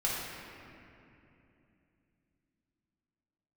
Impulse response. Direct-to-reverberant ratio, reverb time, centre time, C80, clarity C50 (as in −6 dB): −7.0 dB, 2.8 s, 139 ms, 0.5 dB, −1.5 dB